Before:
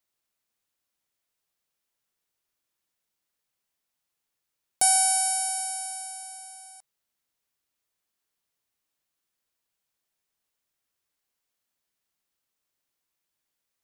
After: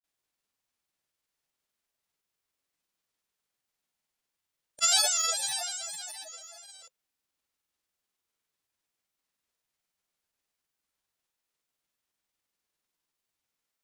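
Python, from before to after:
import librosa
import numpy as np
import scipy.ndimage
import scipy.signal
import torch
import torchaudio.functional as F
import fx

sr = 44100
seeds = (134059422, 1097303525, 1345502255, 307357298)

y = fx.granulator(x, sr, seeds[0], grain_ms=100.0, per_s=20.0, spray_ms=100.0, spread_st=3)
y = fx.formant_shift(y, sr, semitones=-5)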